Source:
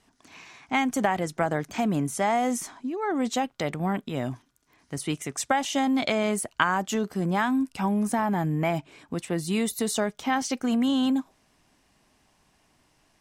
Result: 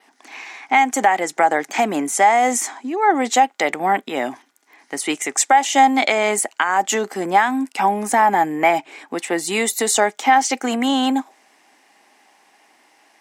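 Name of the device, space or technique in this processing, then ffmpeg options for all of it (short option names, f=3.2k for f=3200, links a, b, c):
laptop speaker: -af "adynamicequalizer=threshold=0.00251:dfrequency=7300:dqfactor=3:tfrequency=7300:tqfactor=3:attack=5:release=100:ratio=0.375:range=4:mode=boostabove:tftype=bell,highpass=f=280:w=0.5412,highpass=f=280:w=1.3066,equalizer=f=810:t=o:w=0.22:g=10.5,equalizer=f=2k:t=o:w=0.57:g=8,alimiter=limit=-11.5dB:level=0:latency=1:release=293,volume=8dB"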